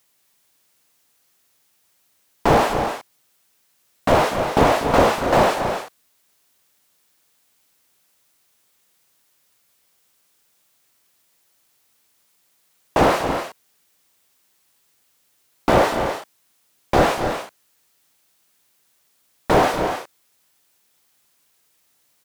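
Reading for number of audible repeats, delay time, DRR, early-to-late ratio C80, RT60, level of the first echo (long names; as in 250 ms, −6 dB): 2, 243 ms, no reverb audible, no reverb audible, no reverb audible, −11.5 dB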